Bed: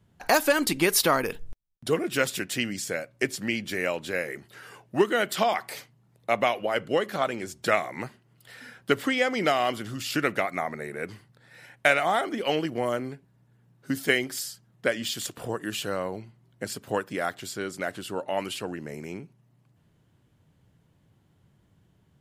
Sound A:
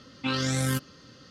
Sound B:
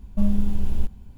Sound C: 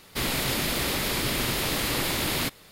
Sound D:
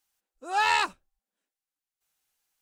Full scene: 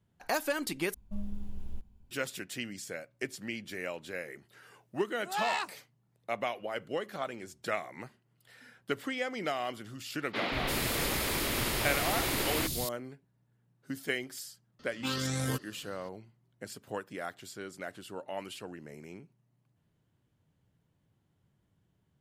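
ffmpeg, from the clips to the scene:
-filter_complex "[0:a]volume=-10dB[a];[4:a]highpass=120[b];[3:a]acrossover=split=190|4000[c][d][e];[c]adelay=180[f];[e]adelay=340[g];[f][d][g]amix=inputs=3:normalize=0[h];[a]asplit=2[i][j];[i]atrim=end=0.944[k];[2:a]atrim=end=1.17,asetpts=PTS-STARTPTS,volume=-17dB[l];[j]atrim=start=2.106[m];[b]atrim=end=2.61,asetpts=PTS-STARTPTS,volume=-9dB,afade=t=in:d=0.004:c=hsin,afade=t=out:st=2.606:d=0.004:c=hsin,adelay=4790[n];[h]atrim=end=2.71,asetpts=PTS-STARTPTS,volume=-3.5dB,afade=t=in:d=0.004:c=hsin,afade=t=out:st=2.706:d=0.004:c=hsin,adelay=448938S[o];[1:a]atrim=end=1.3,asetpts=PTS-STARTPTS,volume=-6dB,afade=t=in:d=0.004:c=hsin,afade=t=out:st=1.296:d=0.004:c=hsin,adelay=14790[p];[k][l]acrossfade=d=0.004:c1=hsin:c2=hsin[q];[q][m]acrossfade=d=0.004:c1=hsin:c2=hsin[r];[r][n][o][p]amix=inputs=4:normalize=0"

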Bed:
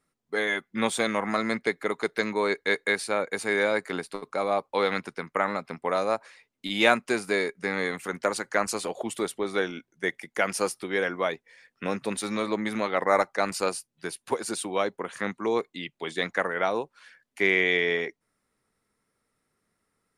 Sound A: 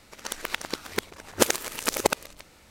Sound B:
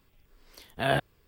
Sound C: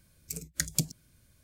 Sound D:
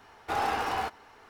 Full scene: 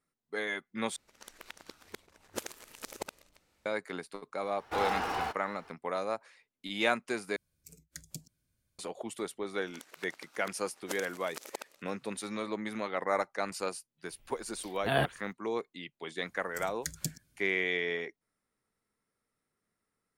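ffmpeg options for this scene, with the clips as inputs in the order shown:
-filter_complex "[1:a]asplit=2[a][b];[3:a]asplit=2[c][d];[0:a]volume=-8dB[e];[b]highpass=320[f];[e]asplit=3[g][h][i];[g]atrim=end=0.964[j];[a]atrim=end=2.7,asetpts=PTS-STARTPTS,volume=-17.5dB[k];[h]atrim=start=3.656:end=7.364[l];[c]atrim=end=1.43,asetpts=PTS-STARTPTS,volume=-16dB[m];[i]atrim=start=8.786[n];[4:a]atrim=end=1.29,asetpts=PTS-STARTPTS,volume=-3dB,afade=t=in:d=0.004:c=hsin,afade=t=out:st=1.286:d=0.004:c=hsin,adelay=4430[o];[f]atrim=end=2.7,asetpts=PTS-STARTPTS,volume=-18dB,afade=t=in:d=0.004:c=hsin,afade=t=out:st=2.696:d=0.004:c=hsin,adelay=9490[p];[2:a]atrim=end=1.27,asetpts=PTS-STARTPTS,volume=-2.5dB,afade=t=in:d=0.004:c=hsin,afade=t=out:st=1.266:d=0.004:c=hsin,adelay=14060[q];[d]atrim=end=1.43,asetpts=PTS-STARTPTS,volume=-7.5dB,afade=t=in:d=0.004:c=hsin,afade=t=out:st=1.426:d=0.004:c=hsin,adelay=16260[r];[j][k]acrossfade=d=0.004:c1=hsin:c2=hsin[s];[s][l]acrossfade=d=0.004:c1=hsin:c2=hsin[t];[t][m]acrossfade=d=0.004:c1=hsin:c2=hsin[u];[u][n]acrossfade=d=0.004:c1=hsin:c2=hsin[v];[v][o][p][q][r]amix=inputs=5:normalize=0"

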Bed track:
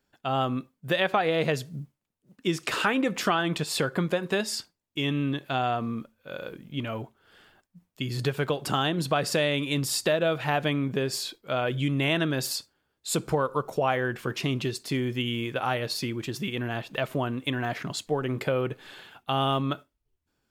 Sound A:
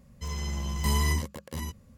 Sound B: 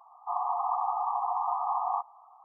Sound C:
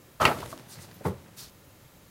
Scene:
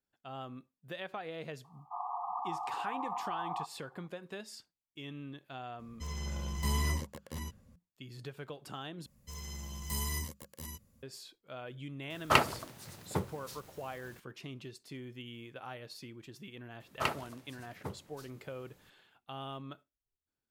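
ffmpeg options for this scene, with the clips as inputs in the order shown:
-filter_complex "[1:a]asplit=2[a][b];[3:a]asplit=2[c][d];[0:a]volume=-17.5dB[e];[b]aemphasis=mode=production:type=50kf[f];[c]acrusher=bits=8:mix=0:aa=0.5[g];[e]asplit=2[h][i];[h]atrim=end=9.064[j];[f]atrim=end=1.97,asetpts=PTS-STARTPTS,volume=-12dB[k];[i]atrim=start=11.026[l];[2:a]atrim=end=2.44,asetpts=PTS-STARTPTS,volume=-8.5dB,afade=t=in:d=0.004:c=hsin,afade=t=out:st=2.436:d=0.004:c=hsin,adelay=1640[m];[a]atrim=end=1.97,asetpts=PTS-STARTPTS,volume=-6dB,afade=t=in:d=0.004:c=hsin,afade=t=out:st=1.966:d=0.004:c=hsin,adelay=5790[n];[g]atrim=end=2.1,asetpts=PTS-STARTPTS,volume=-3dB,afade=t=in:d=0.004:c=hsin,afade=t=out:st=2.096:d=0.004:c=hsin,adelay=12100[o];[d]atrim=end=2.1,asetpts=PTS-STARTPTS,volume=-11dB,afade=t=in:d=0.004:c=hsin,afade=t=out:st=2.096:d=0.004:c=hsin,adelay=16800[p];[j][k]acrossfade=d=0.004:c1=hsin:c2=hsin[q];[q][l]acrossfade=d=0.004:c1=hsin:c2=hsin[r];[r][m][n][o][p]amix=inputs=5:normalize=0"

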